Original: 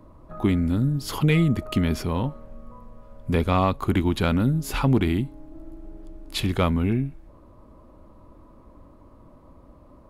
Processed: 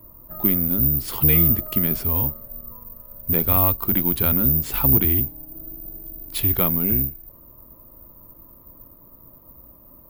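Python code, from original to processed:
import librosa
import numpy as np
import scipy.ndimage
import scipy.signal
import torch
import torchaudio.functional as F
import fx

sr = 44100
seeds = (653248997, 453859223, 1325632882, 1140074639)

y = fx.octave_divider(x, sr, octaves=1, level_db=-2.0)
y = (np.kron(y[::3], np.eye(3)[0]) * 3)[:len(y)]
y = y * librosa.db_to_amplitude(-3.5)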